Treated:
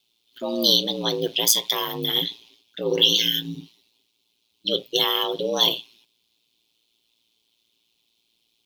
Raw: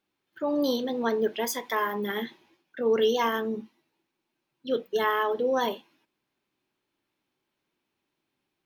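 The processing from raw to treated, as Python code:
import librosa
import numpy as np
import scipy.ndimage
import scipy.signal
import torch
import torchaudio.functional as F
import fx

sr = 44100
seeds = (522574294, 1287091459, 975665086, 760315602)

y = fx.high_shelf_res(x, sr, hz=2400.0, db=12.5, q=3.0)
y = fx.spec_repair(y, sr, seeds[0], start_s=2.93, length_s=0.66, low_hz=390.0, high_hz=1500.0, source='both')
y = y * np.sin(2.0 * np.pi * 57.0 * np.arange(len(y)) / sr)
y = F.gain(torch.from_numpy(y), 3.5).numpy()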